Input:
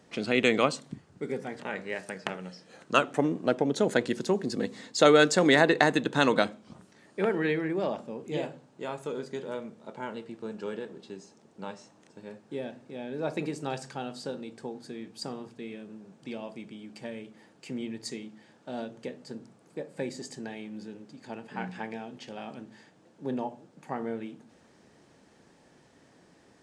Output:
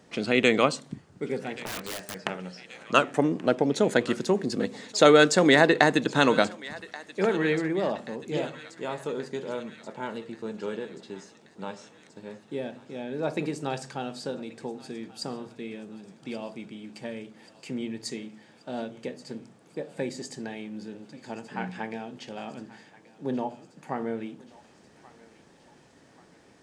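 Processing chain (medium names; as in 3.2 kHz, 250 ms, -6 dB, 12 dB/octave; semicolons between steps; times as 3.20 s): thinning echo 1131 ms, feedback 64%, high-pass 1 kHz, level -17 dB; 1.66–2.16 s: integer overflow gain 31 dB; trim +2.5 dB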